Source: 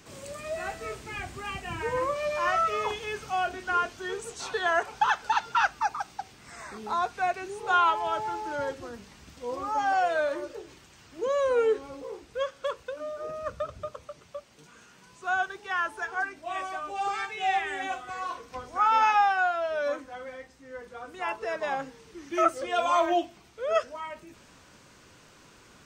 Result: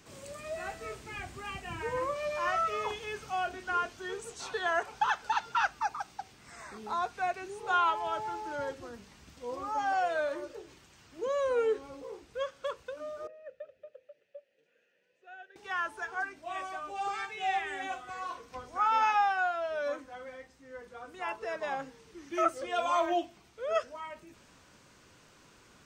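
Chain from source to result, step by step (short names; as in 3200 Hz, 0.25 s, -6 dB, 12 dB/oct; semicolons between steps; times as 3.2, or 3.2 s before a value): 13.27–15.56 vowel filter e; gain -4.5 dB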